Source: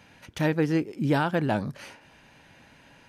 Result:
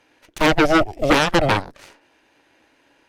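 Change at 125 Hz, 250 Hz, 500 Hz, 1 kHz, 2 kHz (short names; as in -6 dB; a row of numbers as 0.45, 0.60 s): +1.5, +5.0, +9.0, +11.5, +12.0 dB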